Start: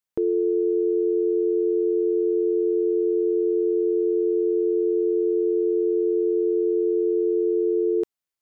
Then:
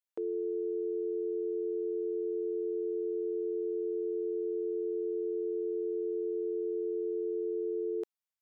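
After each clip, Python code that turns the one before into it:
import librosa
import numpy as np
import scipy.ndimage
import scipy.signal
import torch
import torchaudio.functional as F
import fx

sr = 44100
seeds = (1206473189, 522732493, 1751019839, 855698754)

y = scipy.signal.sosfilt(scipy.signal.butter(2, 440.0, 'highpass', fs=sr, output='sos'), x)
y = y * 10.0 ** (-8.0 / 20.0)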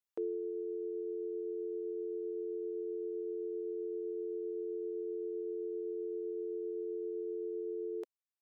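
y = fx.dereverb_blind(x, sr, rt60_s=1.1)
y = y * 10.0 ** (-1.0 / 20.0)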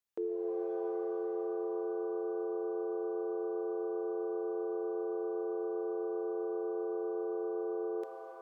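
y = fx.rev_shimmer(x, sr, seeds[0], rt60_s=2.8, semitones=7, shimmer_db=-2, drr_db=5.5)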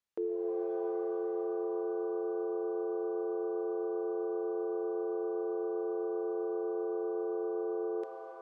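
y = fx.air_absorb(x, sr, metres=54.0)
y = y * 10.0 ** (1.5 / 20.0)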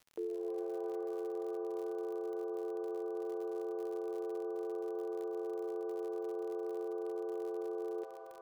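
y = fx.dmg_crackle(x, sr, seeds[1], per_s=78.0, level_db=-41.0)
y = y * 10.0 ** (-4.5 / 20.0)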